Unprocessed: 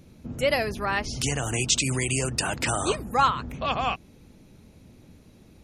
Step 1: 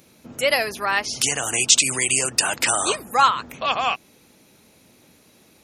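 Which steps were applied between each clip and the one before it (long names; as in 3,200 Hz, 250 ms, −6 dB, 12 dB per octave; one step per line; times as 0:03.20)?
high-pass filter 760 Hz 6 dB per octave
high-shelf EQ 10,000 Hz +8.5 dB
level +6.5 dB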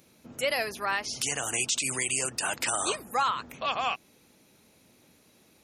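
brickwall limiter −10.5 dBFS, peak gain reduction 8.5 dB
level −6.5 dB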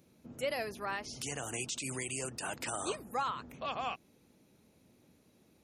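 tilt shelving filter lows +5 dB, about 660 Hz
level −6 dB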